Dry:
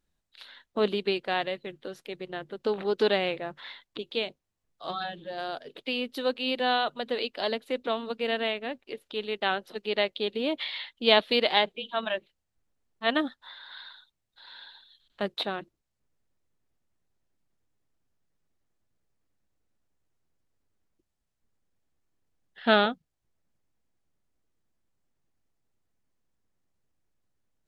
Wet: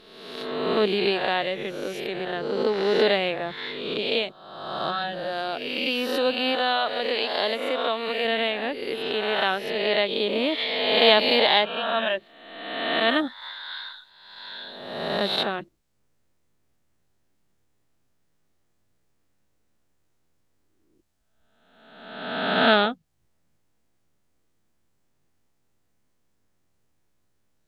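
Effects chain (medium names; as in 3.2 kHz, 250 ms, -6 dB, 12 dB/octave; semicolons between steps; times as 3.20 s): reverse spectral sustain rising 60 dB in 1.21 s; 6.55–8.25 s: bass shelf 280 Hz -9 dB; in parallel at 0 dB: compression, threshold -33 dBFS, peak gain reduction 19 dB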